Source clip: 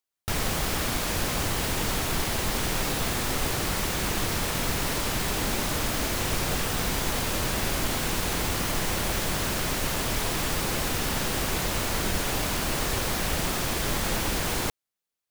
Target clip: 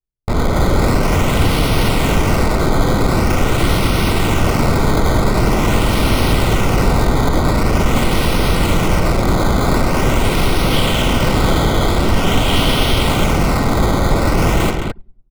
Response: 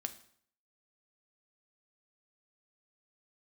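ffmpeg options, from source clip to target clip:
-filter_complex "[0:a]alimiter=limit=-18dB:level=0:latency=1:release=171,aecho=1:1:99|198|297|396|495:0.282|0.141|0.0705|0.0352|0.0176,acrusher=samples=11:mix=1:aa=0.000001:lfo=1:lforange=11:lforate=0.45,asettb=1/sr,asplit=3[a][b][c];[a]atrim=end=10.714[d];[b]atrim=start=10.71:end=13.03,asetpts=PTS-STARTPTS,afade=t=in:d=0.004:c=qsin,afade=t=out:st=2.316:d=0.004:c=qsin,equalizer=f=3.2k:t=o:w=0.34:g=9.5[e];[c]atrim=start=13.026[f];[d][e]acrossfade=d=0.004:c1=hsin:c2=qsin[g];[g][f]acrossfade=d=0.004:c1=qsin:c2=hsin,aecho=1:1:47|216:0.282|0.562,anlmdn=6.31,asuperstop=centerf=1700:order=12:qfactor=6.8,lowshelf=f=490:g=7.5,acontrast=75,volume=2dB"

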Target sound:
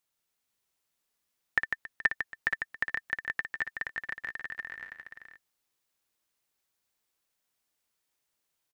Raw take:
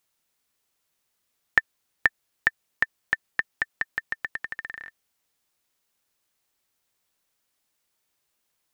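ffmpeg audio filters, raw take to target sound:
-af "aecho=1:1:57|149|275|425|475:0.376|0.501|0.126|0.126|0.596,volume=-7.5dB"

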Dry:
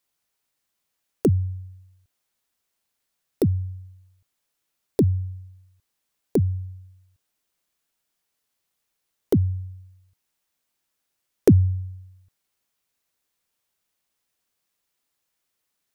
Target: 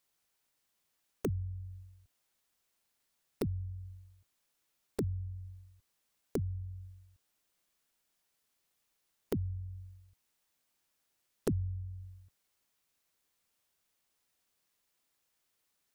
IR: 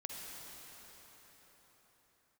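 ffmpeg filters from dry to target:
-filter_complex "[0:a]acompressor=threshold=-38dB:ratio=2.5,asplit=2[a][b];[b]asetrate=22050,aresample=44100,atempo=2,volume=-11dB[c];[a][c]amix=inputs=2:normalize=0,volume=-1.5dB"

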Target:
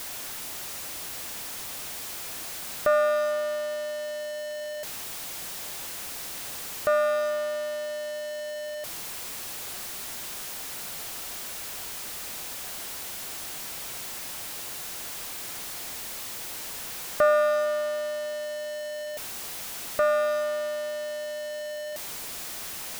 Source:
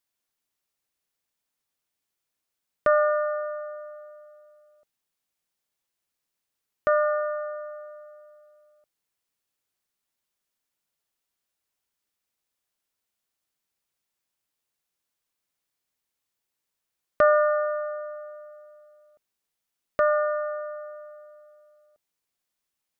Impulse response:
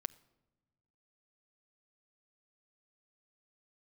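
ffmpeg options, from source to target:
-af "aeval=exprs='val(0)+0.5*0.0501*sgn(val(0))':c=same,equalizer=f=710:t=o:w=0.55:g=2.5,volume=-4dB"

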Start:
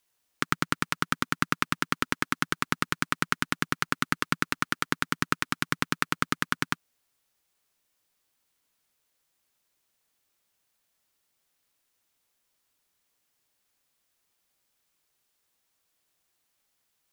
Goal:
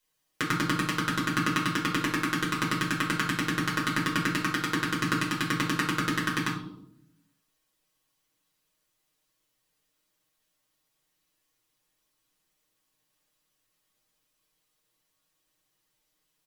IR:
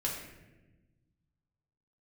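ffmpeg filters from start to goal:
-filter_complex "[0:a]aecho=1:1:6.7:0.65,asetrate=45864,aresample=44100[a];[1:a]atrim=start_sample=2205,asetrate=83790,aresample=44100[b];[a][b]afir=irnorm=-1:irlink=0"

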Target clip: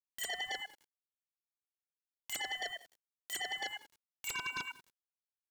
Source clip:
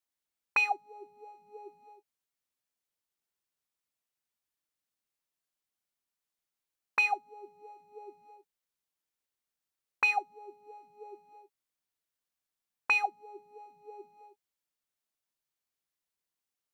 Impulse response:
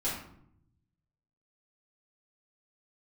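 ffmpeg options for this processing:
-filter_complex "[0:a]highpass=170,bandreject=f=279.2:t=h:w=4,bandreject=f=558.4:t=h:w=4,bandreject=f=837.6:t=h:w=4,bandreject=f=1.1168k:t=h:w=4,bandreject=f=1.396k:t=h:w=4,bandreject=f=1.6752k:t=h:w=4,bandreject=f=1.9544k:t=h:w=4,bandreject=f=2.2336k:t=h:w=4,bandreject=f=2.5128k:t=h:w=4,bandreject=f=2.792k:t=h:w=4,bandreject=f=3.0712k:t=h:w=4,bandreject=f=3.3504k:t=h:w=4,bandreject=f=3.6296k:t=h:w=4,bandreject=f=3.9088k:t=h:w=4,bandreject=f=4.188k:t=h:w=4,bandreject=f=4.4672k:t=h:w=4,bandreject=f=4.7464k:t=h:w=4,bandreject=f=5.0256k:t=h:w=4,bandreject=f=5.3048k:t=h:w=4,bandreject=f=5.584k:t=h:w=4,bandreject=f=5.8632k:t=h:w=4,bandreject=f=6.1424k:t=h:w=4,bandreject=f=6.4216k:t=h:w=4,bandreject=f=6.7008k:t=h:w=4,bandreject=f=6.98k:t=h:w=4,bandreject=f=7.2592k:t=h:w=4,bandreject=f=7.5384k:t=h:w=4,bandreject=f=7.8176k:t=h:w=4,bandreject=f=8.0968k:t=h:w=4,bandreject=f=8.376k:t=h:w=4,bandreject=f=8.6552k:t=h:w=4,bandreject=f=8.9344k:t=h:w=4,bandreject=f=9.2136k:t=h:w=4,bandreject=f=9.4928k:t=h:w=4,bandreject=f=9.772k:t=h:w=4,areverse,acompressor=threshold=-40dB:ratio=12,areverse,aeval=exprs='0.0188*sin(PI/2*3.55*val(0)/0.0188)':c=same,asplit=2[a][b];[b]adelay=576,lowpass=f=1.6k:p=1,volume=-18.5dB,asplit=2[c][d];[d]adelay=576,lowpass=f=1.6k:p=1,volume=0.26[e];[a][c][e]amix=inputs=3:normalize=0,asetrate=134064,aresample=44100,aeval=exprs='val(0)*gte(abs(val(0)),0.00133)':c=same,aeval=exprs='val(0)*sin(2*PI*420*n/s+420*0.4/0.33*sin(2*PI*0.33*n/s))':c=same,volume=3.5dB"

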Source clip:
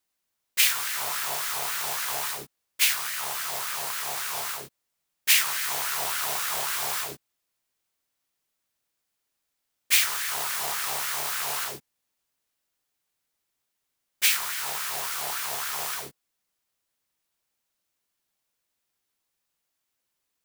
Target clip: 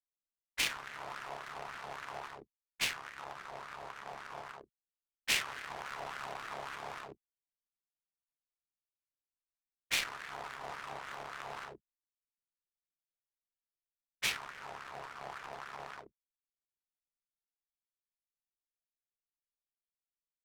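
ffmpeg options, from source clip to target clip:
-af "anlmdn=2.51,adynamicsmooth=sensitivity=3:basefreq=570,volume=-7.5dB"

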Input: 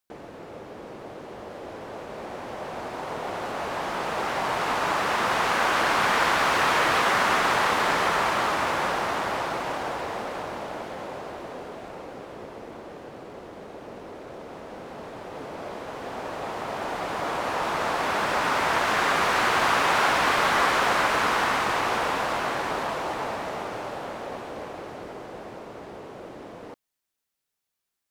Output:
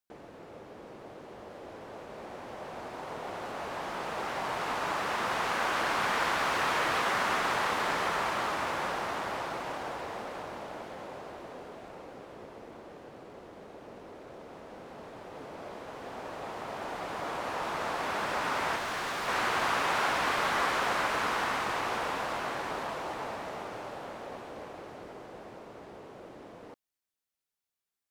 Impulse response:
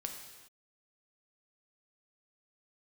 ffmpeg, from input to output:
-filter_complex "[0:a]asettb=1/sr,asplit=3[a][b][c];[a]atrim=end=18.764[d];[b]atrim=start=18.76:end=19.28,asetpts=PTS-STARTPTS,afade=t=in:d=0.004:c=qsin,afade=t=out:st=0.516:d=0.004:c=qsin,volume=25dB,asoftclip=hard,volume=-25dB[e];[c]atrim=start=19.276[f];[d][e]acrossfade=d=0.004:c1=hsin:c2=qsin[g];[g][f]acrossfade=d=0.004:c1=qsin:c2=hsin,volume=-7dB"

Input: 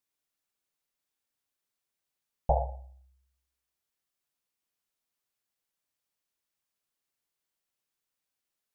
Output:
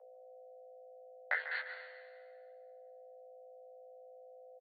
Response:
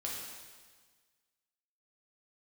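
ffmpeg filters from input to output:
-filter_complex "[0:a]highpass=f=460:p=1,bandreject=f=1k:w=5.2,alimiter=limit=-22dB:level=0:latency=1,asplit=2[a][b];[b]adelay=380,highpass=300,lowpass=3.4k,asoftclip=type=hard:threshold=-30.5dB,volume=-10dB[c];[a][c]amix=inputs=2:normalize=0,asetrate=83790,aresample=44100,aresample=8000,aeval=exprs='val(0)*gte(abs(val(0)),0.00631)':c=same,aresample=44100,acompressor=threshold=-41dB:ratio=12,flanger=delay=19:depth=3.4:speed=2.1,aeval=exprs='val(0)+0.000398*(sin(2*PI*60*n/s)+sin(2*PI*2*60*n/s)/2+sin(2*PI*3*60*n/s)/3+sin(2*PI*4*60*n/s)/4+sin(2*PI*5*60*n/s)/5)':c=same,asplit=2[d][e];[e]adelay=13,volume=-3.5dB[f];[d][f]amix=inputs=2:normalize=0,asplit=2[g][h];[1:a]atrim=start_sample=2205,adelay=144[i];[h][i]afir=irnorm=-1:irlink=0,volume=-9dB[j];[g][j]amix=inputs=2:normalize=0,afreqshift=450,volume=11.5dB"

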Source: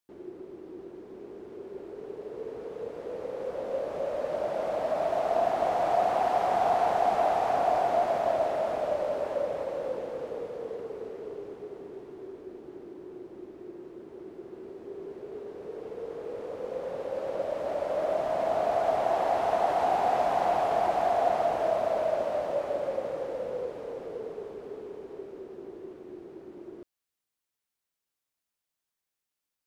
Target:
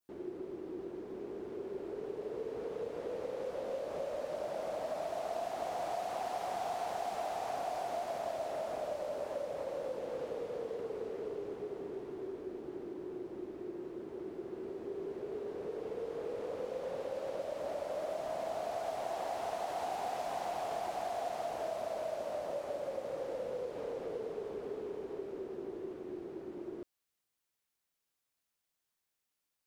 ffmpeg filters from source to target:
-filter_complex "[0:a]adynamicequalizer=threshold=0.00562:dfrequency=3100:dqfactor=0.72:tfrequency=3100:tqfactor=0.72:attack=5:release=100:ratio=0.375:range=2.5:mode=cutabove:tftype=bell,acrossover=split=2500[a][b];[a]acompressor=threshold=-37dB:ratio=6[c];[c][b]amix=inputs=2:normalize=0,volume=1dB"

